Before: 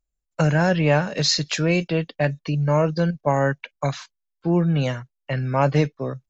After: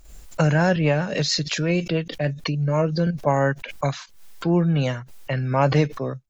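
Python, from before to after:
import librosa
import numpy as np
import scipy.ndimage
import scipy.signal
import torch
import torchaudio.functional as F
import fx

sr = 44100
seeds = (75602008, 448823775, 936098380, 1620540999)

y = fx.rotary(x, sr, hz=6.3, at=(0.76, 3.07))
y = fx.pre_swell(y, sr, db_per_s=81.0)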